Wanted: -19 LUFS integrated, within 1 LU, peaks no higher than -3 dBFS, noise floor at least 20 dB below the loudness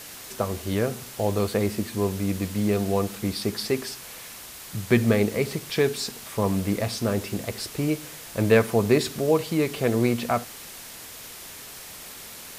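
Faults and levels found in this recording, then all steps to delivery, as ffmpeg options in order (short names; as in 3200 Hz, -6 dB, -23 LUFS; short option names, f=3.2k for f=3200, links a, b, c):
noise floor -42 dBFS; noise floor target -46 dBFS; loudness -25.5 LUFS; peak -5.5 dBFS; loudness target -19.0 LUFS
-> -af "afftdn=nr=6:nf=-42"
-af "volume=6.5dB,alimiter=limit=-3dB:level=0:latency=1"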